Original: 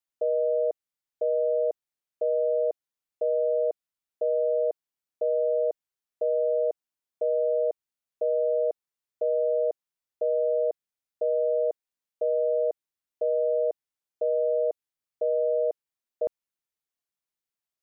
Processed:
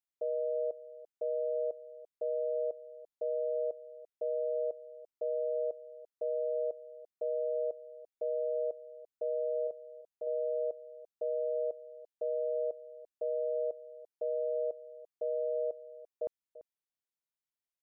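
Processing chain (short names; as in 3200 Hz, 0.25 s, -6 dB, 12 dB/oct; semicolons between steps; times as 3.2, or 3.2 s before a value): 9.67–10.27 bell 490 Hz -4 dB 1.4 oct; echo 0.34 s -16 dB; gain -8.5 dB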